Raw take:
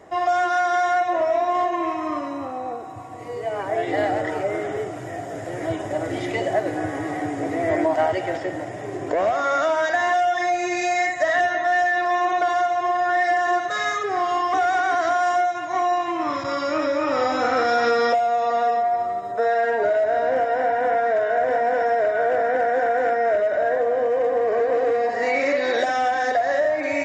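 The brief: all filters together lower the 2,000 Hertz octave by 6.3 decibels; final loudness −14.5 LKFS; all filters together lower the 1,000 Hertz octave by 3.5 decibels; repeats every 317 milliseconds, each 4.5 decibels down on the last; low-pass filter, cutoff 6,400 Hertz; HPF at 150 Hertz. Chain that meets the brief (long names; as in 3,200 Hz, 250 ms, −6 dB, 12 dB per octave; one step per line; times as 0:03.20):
high-pass filter 150 Hz
low-pass filter 6,400 Hz
parametric band 1,000 Hz −5 dB
parametric band 2,000 Hz −6 dB
repeating echo 317 ms, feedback 60%, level −4.5 dB
level +8 dB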